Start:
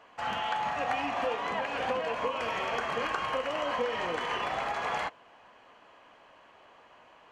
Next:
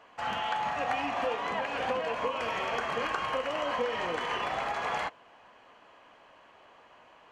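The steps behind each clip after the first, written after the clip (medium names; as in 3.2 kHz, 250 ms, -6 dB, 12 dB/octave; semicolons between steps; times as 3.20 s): no audible change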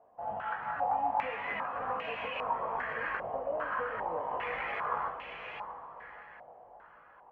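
echo that smears into a reverb 606 ms, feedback 45%, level -6 dB; chorus voices 6, 0.88 Hz, delay 19 ms, depth 1.2 ms; step-sequenced low-pass 2.5 Hz 700–2600 Hz; trim -6.5 dB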